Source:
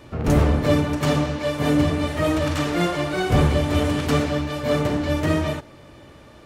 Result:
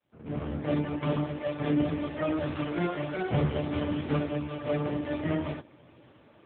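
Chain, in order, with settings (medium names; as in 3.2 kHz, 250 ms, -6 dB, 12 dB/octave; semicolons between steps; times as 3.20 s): fade-in on the opening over 0.87 s; trim -6.5 dB; AMR-NB 5.9 kbps 8 kHz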